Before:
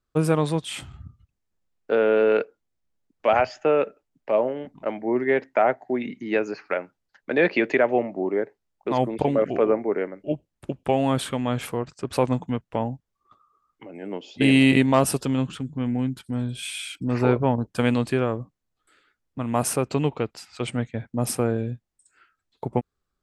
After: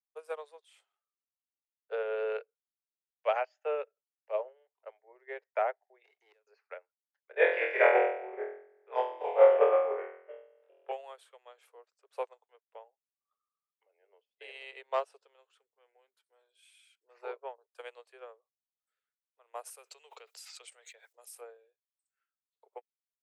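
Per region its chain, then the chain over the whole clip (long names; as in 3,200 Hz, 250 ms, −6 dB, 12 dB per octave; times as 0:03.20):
0:06.04–0:06.47: gate with flip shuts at −18 dBFS, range −27 dB + leveller curve on the samples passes 2
0:07.31–0:10.92: Savitzky-Golay smoothing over 25 samples + flutter between parallel walls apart 4.1 metres, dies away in 1.4 s
0:14.07–0:15.39: downward expander −36 dBFS + high-frequency loss of the air 89 metres
0:19.70–0:21.41: first-order pre-emphasis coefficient 0.9 + hum removal 66.17 Hz, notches 3 + envelope flattener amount 100%
whole clip: Butterworth high-pass 420 Hz 72 dB per octave; expander for the loud parts 2.5 to 1, over −31 dBFS; level −2 dB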